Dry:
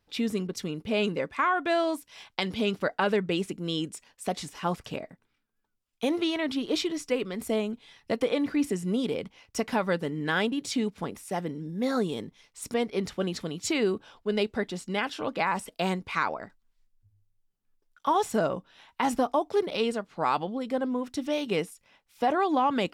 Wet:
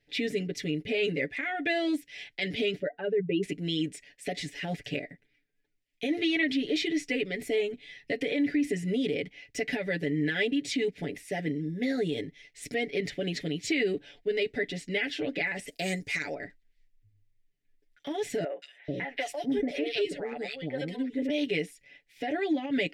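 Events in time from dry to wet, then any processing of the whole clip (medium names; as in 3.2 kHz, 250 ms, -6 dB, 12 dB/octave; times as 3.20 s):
2.80–3.43 s: spectral contrast enhancement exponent 1.8
15.67–16.35 s: resonant high shelf 4.7 kHz +12 dB, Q 1.5
18.44–21.30 s: three bands offset in time mids, highs, lows 180/440 ms, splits 480/2200 Hz
whole clip: comb 7 ms, depth 91%; peak limiter -20 dBFS; FFT filter 230 Hz 0 dB, 330 Hz +4 dB, 700 Hz -2 dB, 1.1 kHz -26 dB, 1.9 kHz +11 dB, 2.8 kHz +4 dB, 11 kHz -7 dB; trim -2.5 dB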